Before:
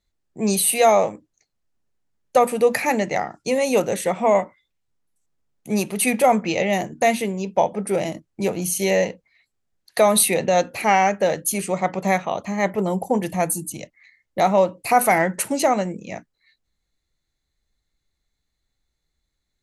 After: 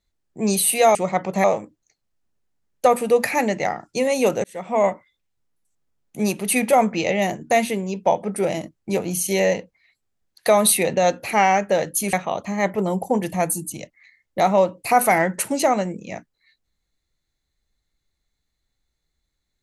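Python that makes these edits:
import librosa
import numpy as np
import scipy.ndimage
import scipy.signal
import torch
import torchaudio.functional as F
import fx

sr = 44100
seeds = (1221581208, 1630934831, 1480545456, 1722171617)

y = fx.edit(x, sr, fx.fade_in_span(start_s=3.95, length_s=0.44),
    fx.move(start_s=11.64, length_s=0.49, to_s=0.95), tone=tone)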